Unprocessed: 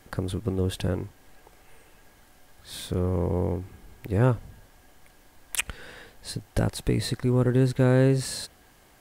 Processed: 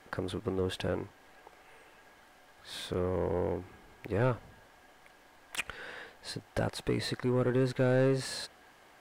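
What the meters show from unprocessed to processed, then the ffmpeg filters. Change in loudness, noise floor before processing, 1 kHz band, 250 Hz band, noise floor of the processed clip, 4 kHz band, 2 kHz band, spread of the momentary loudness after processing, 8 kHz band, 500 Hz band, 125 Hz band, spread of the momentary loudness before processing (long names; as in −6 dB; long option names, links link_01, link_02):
−6.5 dB, −57 dBFS, −3.0 dB, −7.0 dB, −60 dBFS, −4.0 dB, −2.5 dB, 16 LU, −10.0 dB, −3.5 dB, −10.0 dB, 19 LU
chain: -filter_complex "[0:a]asplit=2[link_01][link_02];[link_02]highpass=frequency=720:poles=1,volume=18dB,asoftclip=type=tanh:threshold=-8.5dB[link_03];[link_01][link_03]amix=inputs=2:normalize=0,lowpass=frequency=2000:poles=1,volume=-6dB,volume=-8.5dB"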